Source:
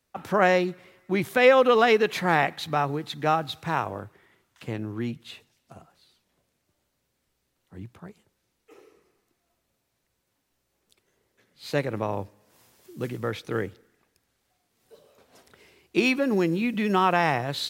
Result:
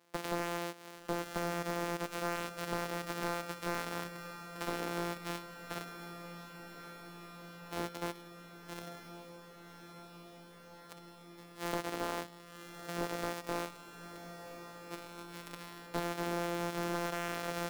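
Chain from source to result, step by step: sample sorter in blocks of 256 samples; HPF 330 Hz 12 dB/oct; compressor 12:1, threshold -38 dBFS, peak gain reduction 25 dB; hard clip -35 dBFS, distortion -8 dB; diffused feedback echo 1.116 s, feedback 77%, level -12 dB; gain +10 dB

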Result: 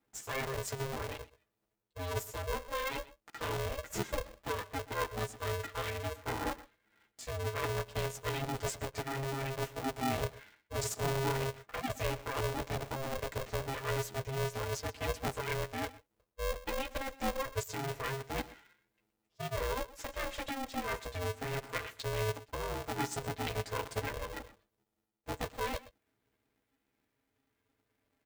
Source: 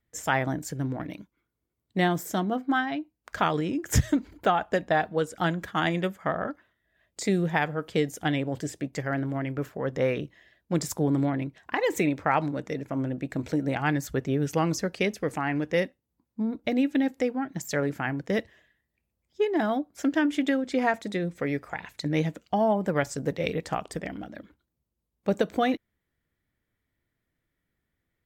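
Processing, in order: notch 1300 Hz; comb 5.4 ms, depth 95%; reverse; compressor 12:1, threshold -30 dBFS, peak gain reduction 17 dB; reverse; chorus voices 2, 0.23 Hz, delay 13 ms, depth 1 ms; on a send: echo 0.123 s -18.5 dB; on the sum: polarity switched at an audio rate 270 Hz

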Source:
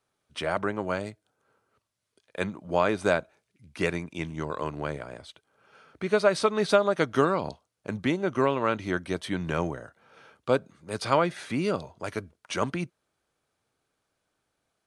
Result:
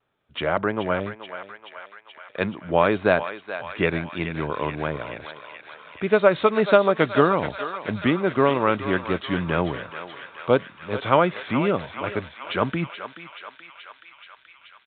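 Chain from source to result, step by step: vibrato 1.7 Hz 59 cents; thinning echo 0.429 s, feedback 79%, high-pass 860 Hz, level -8.5 dB; downsampling 8000 Hz; gain +5 dB

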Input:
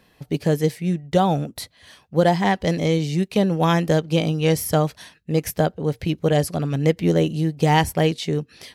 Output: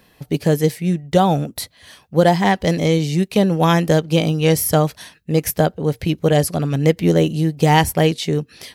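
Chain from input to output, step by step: high shelf 11000 Hz +8 dB; gain +3.5 dB

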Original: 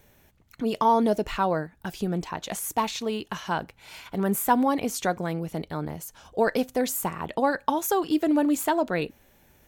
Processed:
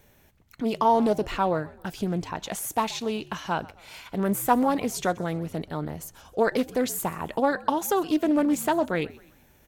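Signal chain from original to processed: frequency-shifting echo 0.129 s, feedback 43%, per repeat -70 Hz, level -21 dB; Doppler distortion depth 0.22 ms

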